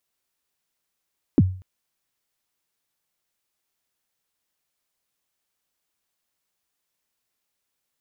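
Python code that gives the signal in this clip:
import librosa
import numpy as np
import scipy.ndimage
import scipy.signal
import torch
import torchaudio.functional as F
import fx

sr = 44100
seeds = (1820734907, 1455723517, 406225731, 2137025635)

y = fx.drum_kick(sr, seeds[0], length_s=0.24, level_db=-8.5, start_hz=350.0, end_hz=93.0, sweep_ms=38.0, decay_s=0.42, click=False)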